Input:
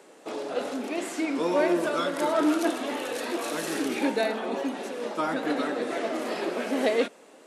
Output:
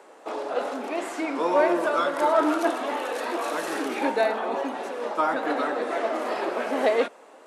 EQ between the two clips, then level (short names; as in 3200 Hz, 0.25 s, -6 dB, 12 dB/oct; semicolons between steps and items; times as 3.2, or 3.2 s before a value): HPF 200 Hz 12 dB/oct; bell 960 Hz +11 dB 2.1 oct; -4.0 dB